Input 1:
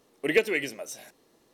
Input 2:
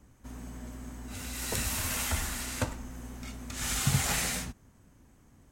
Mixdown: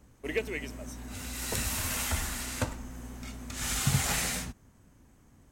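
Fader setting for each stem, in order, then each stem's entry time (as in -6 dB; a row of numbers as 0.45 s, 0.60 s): -9.0 dB, 0.0 dB; 0.00 s, 0.00 s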